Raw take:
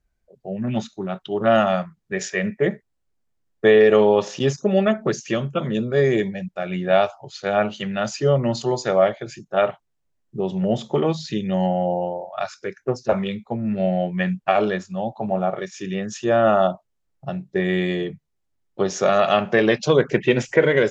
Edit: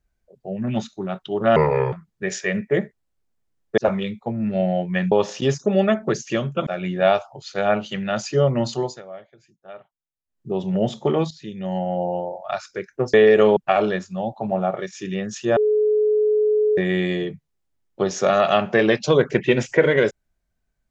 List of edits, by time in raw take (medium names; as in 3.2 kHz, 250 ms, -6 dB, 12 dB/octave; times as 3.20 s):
1.56–1.82 s: speed 71%
3.67–4.10 s: swap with 13.02–14.36 s
5.65–6.55 s: delete
8.53–10.50 s: dip -21 dB, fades 0.37 s equal-power
11.19–12.10 s: fade in, from -14 dB
16.36–17.57 s: bleep 425 Hz -15 dBFS